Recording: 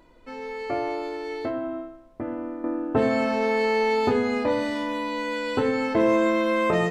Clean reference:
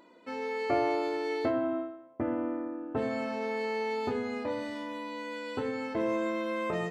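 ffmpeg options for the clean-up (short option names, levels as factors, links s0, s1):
-af "agate=range=0.0891:threshold=0.0398,asetnsamples=n=441:p=0,asendcmd='2.64 volume volume -10dB',volume=1"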